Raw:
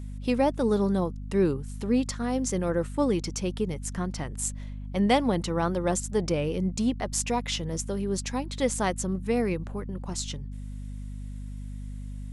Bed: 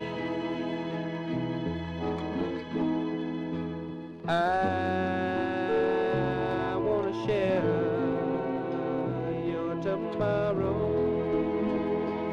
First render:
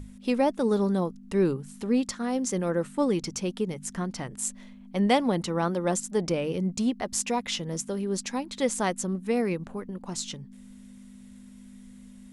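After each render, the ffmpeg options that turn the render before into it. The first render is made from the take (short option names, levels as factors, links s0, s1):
-af "bandreject=f=50:t=h:w=6,bandreject=f=100:t=h:w=6,bandreject=f=150:t=h:w=6"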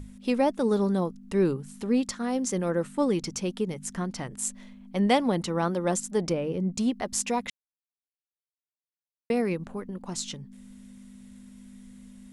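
-filter_complex "[0:a]asettb=1/sr,asplit=3[s0][s1][s2];[s0]atrim=end=6.334[s3];[s1]atrim=start=6.33:end=6.75,asetpts=PTS-STARTPTS,afade=t=in:d=0.004:c=qsin,afade=t=out:st=0.416:d=0.004:c=qsin,highshelf=f=2100:g=-11[s4];[s2]atrim=start=6.746[s5];[s3][s4]acrossfade=d=0.004:c1=hsin:c2=qsin[s6];[s6][s5]acrossfade=d=0.004:c1=qsin:c2=hsin,asplit=3[s7][s8][s9];[s7]atrim=end=7.5,asetpts=PTS-STARTPTS,afade=t=out:st=7.496:d=0.004:c=hsin[s10];[s8]atrim=start=7.5:end=9.3,asetpts=PTS-STARTPTS,volume=0[s11];[s9]atrim=start=9.3,asetpts=PTS-STARTPTS,afade=t=in:d=0.004:c=hsin[s12];[s10][s11][s12]concat=n=3:v=0:a=1"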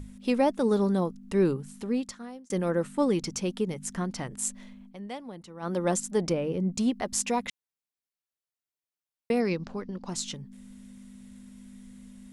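-filter_complex "[0:a]asettb=1/sr,asplit=3[s0][s1][s2];[s0]atrim=end=9.404[s3];[s1]atrim=start=9.4:end=10.09,asetpts=PTS-STARTPTS,afade=t=in:d=0.004:c=qsin,afade=t=out:st=0.686:d=0.004:c=qsin,lowpass=f=5100:t=q:w=4.1[s4];[s2]atrim=start=10.086[s5];[s3][s4]acrossfade=d=0.004:c1=hsin:c2=qsin[s6];[s6][s5]acrossfade=d=0.004:c1=qsin:c2=hsin,asplit=4[s7][s8][s9][s10];[s7]atrim=end=2.5,asetpts=PTS-STARTPTS,afade=t=out:st=1.61:d=0.89[s11];[s8]atrim=start=2.5:end=4.97,asetpts=PTS-STARTPTS,afade=t=in:d=0.004:c=hsin,afade=t=out:st=2.32:d=0.15:silence=0.149624[s12];[s9]atrim=start=4.97:end=5.6,asetpts=PTS-STARTPTS,volume=0.15[s13];[s10]atrim=start=5.6,asetpts=PTS-STARTPTS,afade=t=in:d=0.15:silence=0.149624[s14];[s11][s12][s13][s14]concat=n=4:v=0:a=1"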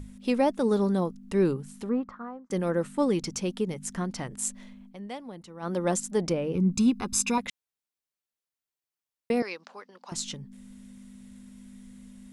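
-filter_complex "[0:a]asettb=1/sr,asplit=3[s0][s1][s2];[s0]atrim=end=1.894[s3];[s1]atrim=start=1.89:end=2.51,asetpts=PTS-STARTPTS,afade=t=in:d=0.004:c=qsin,afade=t=out:st=0.616:d=0.004:c=qsin,lowpass=f=1200:t=q:w=3.9[s4];[s2]atrim=start=2.506[s5];[s3][s4]acrossfade=d=0.004:c1=hsin:c2=qsin[s6];[s6][s5]acrossfade=d=0.004:c1=qsin:c2=hsin,asettb=1/sr,asplit=3[s7][s8][s9];[s7]atrim=end=6.554[s10];[s8]atrim=start=6.55:end=7.38,asetpts=PTS-STARTPTS,afade=t=in:d=0.004:c=qsin,afade=t=out:st=0.826:d=0.004:c=qsin,aecho=1:1:0.8:0.91,atrim=end_sample=36603[s11];[s9]atrim=start=7.376[s12];[s10][s11]acrossfade=d=0.004:c1=hsin:c2=qsin[s13];[s13][s12]acrossfade=d=0.004:c1=qsin:c2=hsin,asettb=1/sr,asplit=3[s14][s15][s16];[s14]atrim=end=9.424[s17];[s15]atrim=start=9.42:end=10.12,asetpts=PTS-STARTPTS,afade=t=in:d=0.004:c=qsin,afade=t=out:st=0.696:d=0.004:c=qsin,highpass=750[s18];[s16]atrim=start=10.116[s19];[s17][s18]acrossfade=d=0.004:c1=hsin:c2=qsin[s20];[s20][s19]acrossfade=d=0.004:c1=qsin:c2=hsin"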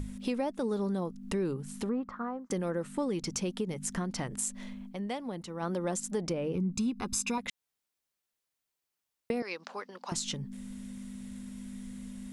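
-filter_complex "[0:a]asplit=2[s0][s1];[s1]alimiter=limit=0.0668:level=0:latency=1:release=100,volume=0.794[s2];[s0][s2]amix=inputs=2:normalize=0,acompressor=threshold=0.0251:ratio=3"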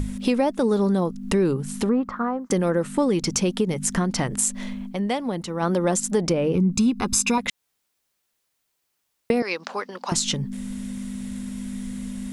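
-af "volume=3.55"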